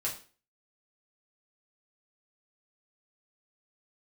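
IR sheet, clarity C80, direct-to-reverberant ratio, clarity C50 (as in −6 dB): 14.0 dB, −5.0 dB, 9.0 dB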